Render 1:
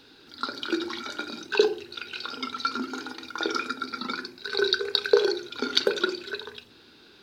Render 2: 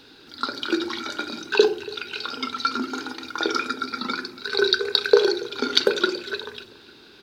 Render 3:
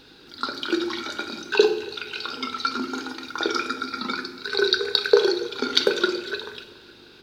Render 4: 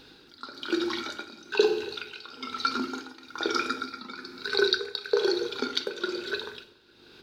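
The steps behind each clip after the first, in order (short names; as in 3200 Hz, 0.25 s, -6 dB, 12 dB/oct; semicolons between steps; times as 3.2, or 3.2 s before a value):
feedback echo 0.283 s, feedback 42%, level -19.5 dB; gain +4 dB
two-slope reverb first 0.81 s, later 3 s, DRR 9 dB; buzz 50 Hz, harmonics 10, -60 dBFS 0 dB/oct; gain -1 dB
tremolo 1.1 Hz, depth 74%; gain -1.5 dB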